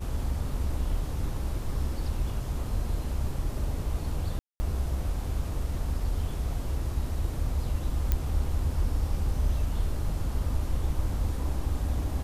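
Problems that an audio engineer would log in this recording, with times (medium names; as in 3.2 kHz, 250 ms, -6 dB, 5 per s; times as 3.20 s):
4.39–4.60 s: dropout 210 ms
8.12 s: pop -12 dBFS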